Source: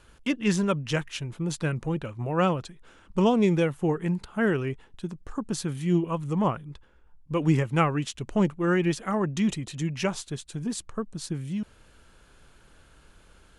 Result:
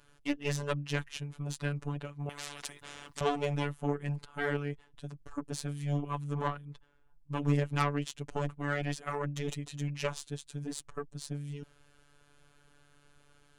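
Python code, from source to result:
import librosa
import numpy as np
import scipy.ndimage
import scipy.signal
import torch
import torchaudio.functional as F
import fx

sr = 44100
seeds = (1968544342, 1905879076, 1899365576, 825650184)

y = fx.cheby_harmonics(x, sr, harmonics=(3, 5, 6, 8), levels_db=(-17, -23, -14, -26), full_scale_db=-8.0)
y = fx.robotise(y, sr, hz=144.0)
y = fx.spectral_comp(y, sr, ratio=10.0, at=(2.29, 3.21))
y = y * 10.0 ** (-4.0 / 20.0)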